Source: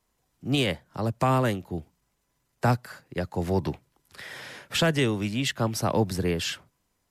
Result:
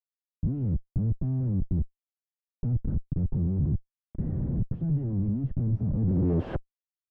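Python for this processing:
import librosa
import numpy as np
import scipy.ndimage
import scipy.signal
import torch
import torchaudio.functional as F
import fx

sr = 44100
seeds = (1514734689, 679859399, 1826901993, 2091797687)

y = fx.peak_eq(x, sr, hz=280.0, db=3.5, octaves=0.3)
y = fx.schmitt(y, sr, flips_db=-39.5)
y = fx.filter_sweep_lowpass(y, sr, from_hz=160.0, to_hz=740.0, start_s=5.9, end_s=6.66, q=1.1)
y = y * librosa.db_to_amplitude(4.5)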